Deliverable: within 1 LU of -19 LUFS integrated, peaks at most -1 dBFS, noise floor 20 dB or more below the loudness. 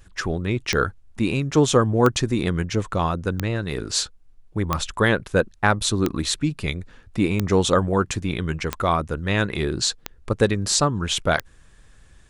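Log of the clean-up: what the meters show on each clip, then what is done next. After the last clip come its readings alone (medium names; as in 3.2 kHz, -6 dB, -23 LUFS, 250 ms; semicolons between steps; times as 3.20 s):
clicks found 9; loudness -22.5 LUFS; peak level -3.0 dBFS; loudness target -19.0 LUFS
-> de-click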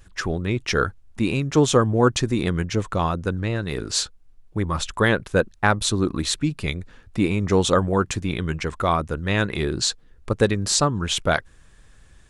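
clicks found 0; loudness -22.5 LUFS; peak level -3.0 dBFS; loudness target -19.0 LUFS
-> trim +3.5 dB; peak limiter -1 dBFS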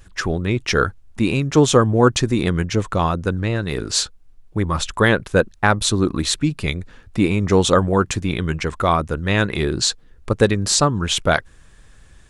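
loudness -19.0 LUFS; peak level -1.0 dBFS; noise floor -48 dBFS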